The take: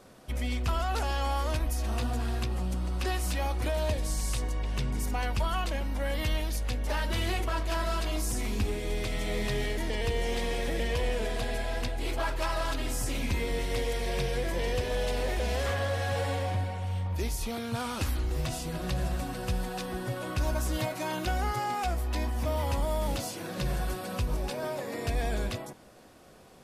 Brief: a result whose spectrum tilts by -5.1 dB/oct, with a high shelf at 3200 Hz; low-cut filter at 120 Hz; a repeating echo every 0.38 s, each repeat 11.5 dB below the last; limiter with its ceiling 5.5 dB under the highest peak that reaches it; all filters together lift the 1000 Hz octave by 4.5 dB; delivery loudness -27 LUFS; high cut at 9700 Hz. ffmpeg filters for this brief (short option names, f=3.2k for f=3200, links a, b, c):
-af "highpass=120,lowpass=9.7k,equalizer=f=1k:t=o:g=6.5,highshelf=f=3.2k:g=-6.5,alimiter=limit=-23.5dB:level=0:latency=1,aecho=1:1:380|760|1140:0.266|0.0718|0.0194,volume=6.5dB"